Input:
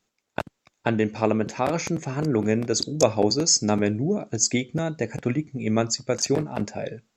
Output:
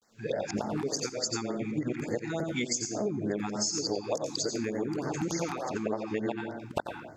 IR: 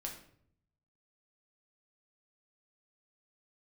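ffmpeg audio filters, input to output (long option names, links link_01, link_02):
-filter_complex "[0:a]areverse,bass=frequency=250:gain=-9,treble=frequency=4000:gain=-2,asplit=2[link_01][link_02];[1:a]atrim=start_sample=2205,adelay=88[link_03];[link_02][link_03]afir=irnorm=-1:irlink=0,volume=-3.5dB[link_04];[link_01][link_04]amix=inputs=2:normalize=0,acompressor=threshold=-34dB:ratio=16,afftfilt=real='re*(1-between(b*sr/1024,500*pow(3100/500,0.5+0.5*sin(2*PI*3.4*pts/sr))/1.41,500*pow(3100/500,0.5+0.5*sin(2*PI*3.4*pts/sr))*1.41))':imag='im*(1-between(b*sr/1024,500*pow(3100/500,0.5+0.5*sin(2*PI*3.4*pts/sr))/1.41,500*pow(3100/500,0.5+0.5*sin(2*PI*3.4*pts/sr))*1.41))':win_size=1024:overlap=0.75,volume=7dB"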